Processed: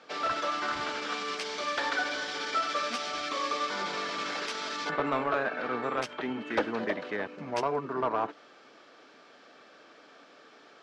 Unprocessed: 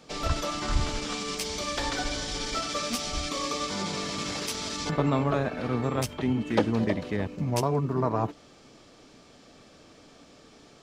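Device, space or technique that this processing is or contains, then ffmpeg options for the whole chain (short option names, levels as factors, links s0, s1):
intercom: -af "highpass=390,lowpass=4000,equalizer=f=1500:t=o:w=0.56:g=8,asoftclip=type=tanh:threshold=0.126"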